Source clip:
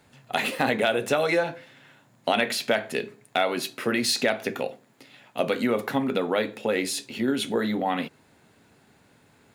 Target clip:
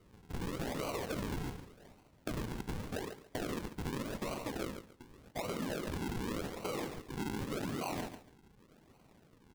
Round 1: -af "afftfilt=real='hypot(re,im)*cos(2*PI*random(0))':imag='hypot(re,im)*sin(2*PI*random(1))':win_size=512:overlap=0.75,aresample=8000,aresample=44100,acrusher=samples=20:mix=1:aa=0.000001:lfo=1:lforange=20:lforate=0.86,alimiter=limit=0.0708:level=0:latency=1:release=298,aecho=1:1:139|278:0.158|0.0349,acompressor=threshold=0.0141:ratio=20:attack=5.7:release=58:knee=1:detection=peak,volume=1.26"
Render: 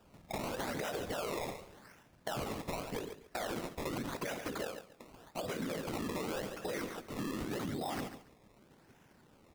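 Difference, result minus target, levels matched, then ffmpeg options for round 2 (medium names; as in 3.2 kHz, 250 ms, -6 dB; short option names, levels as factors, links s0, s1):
decimation with a swept rate: distortion -13 dB
-af "afftfilt=real='hypot(re,im)*cos(2*PI*random(0))':imag='hypot(re,im)*sin(2*PI*random(1))':win_size=512:overlap=0.75,aresample=8000,aresample=44100,acrusher=samples=50:mix=1:aa=0.000001:lfo=1:lforange=50:lforate=0.86,alimiter=limit=0.0708:level=0:latency=1:release=298,aecho=1:1:139|278:0.158|0.0349,acompressor=threshold=0.0141:ratio=20:attack=5.7:release=58:knee=1:detection=peak,volume=1.26"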